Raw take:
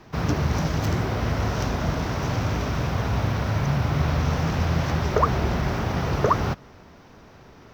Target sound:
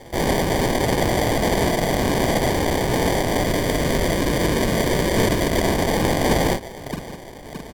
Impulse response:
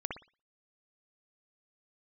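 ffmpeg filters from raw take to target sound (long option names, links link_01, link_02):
-filter_complex "[0:a]highpass=520,lowpass=4700,equalizer=frequency=3300:width=0.37:gain=7,aecho=1:1:621|1242|1863|2484:0.1|0.055|0.0303|0.0166,aeval=exprs='(mod(11.9*val(0)+1,2)-1)/11.9':channel_layout=same,asplit=2[link_01][link_02];[link_02]adelay=43,volume=-4dB[link_03];[link_01][link_03]amix=inputs=2:normalize=0,acrusher=samples=33:mix=1:aa=0.000001,asettb=1/sr,asplit=3[link_04][link_05][link_06];[link_04]atrim=end=3.444[link_07];[link_05]atrim=start=3.44:end=5.62,asetpts=PTS-STARTPTS,afade=type=in:duration=0.004:curve=qsin,afade=type=out:start_time=2.176:duration=0.004:curve=qsin,equalizer=frequency=800:width=6.1:gain=-9[link_08];[link_06]atrim=start=5.616[link_09];[link_07][link_08]acrossfade=duration=0.004:curve1=hsin:curve2=qsin[link_10];[link_10][link_09]acrossfade=duration=0.004:curve1=qsin:curve2=hsin,volume=8dB" -ar 48000 -c:a sbc -b:a 128k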